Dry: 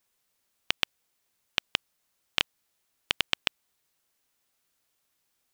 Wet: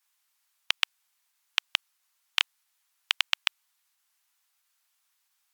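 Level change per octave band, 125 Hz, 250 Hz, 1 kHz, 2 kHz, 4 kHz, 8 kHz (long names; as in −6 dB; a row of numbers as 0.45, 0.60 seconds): below −40 dB, below −30 dB, +0.5 dB, +2.0 dB, +2.0 dB, +2.0 dB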